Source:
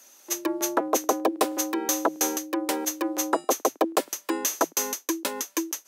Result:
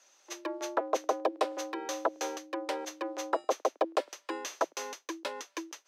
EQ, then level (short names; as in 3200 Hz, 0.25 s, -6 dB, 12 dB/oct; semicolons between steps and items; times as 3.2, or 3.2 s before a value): three-band isolator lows -20 dB, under 350 Hz, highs -24 dB, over 6600 Hz; dynamic EQ 6700 Hz, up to -6 dB, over -47 dBFS, Q 2.2; dynamic EQ 570 Hz, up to +5 dB, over -40 dBFS, Q 3.1; -6.0 dB